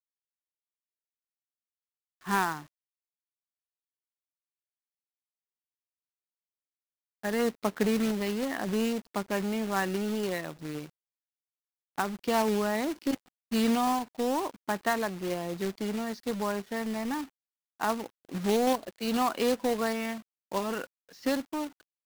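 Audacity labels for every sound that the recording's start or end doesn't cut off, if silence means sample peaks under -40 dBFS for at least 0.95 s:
2.270000	2.610000	sound
7.230000	10.860000	sound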